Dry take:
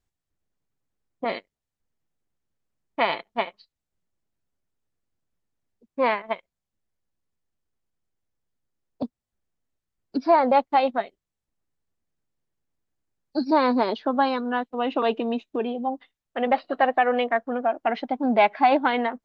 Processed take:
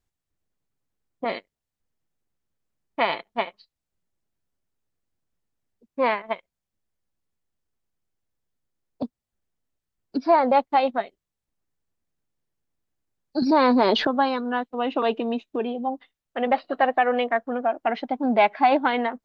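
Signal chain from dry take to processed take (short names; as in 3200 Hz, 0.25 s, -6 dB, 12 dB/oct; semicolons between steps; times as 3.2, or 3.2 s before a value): 13.42–14.07 fast leveller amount 70%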